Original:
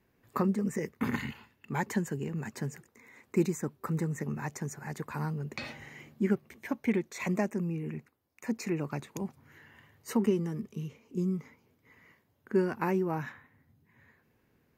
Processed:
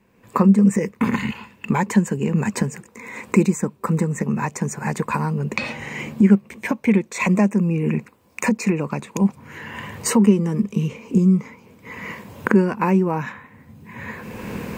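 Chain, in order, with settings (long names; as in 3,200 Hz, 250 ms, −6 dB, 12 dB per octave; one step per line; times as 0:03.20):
camcorder AGC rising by 22 dB per second
thirty-one-band graphic EQ 200 Hz +11 dB, 500 Hz +7 dB, 1,000 Hz +8 dB, 2,500 Hz +7 dB, 8,000 Hz +7 dB, 12,500 Hz −6 dB
level +6 dB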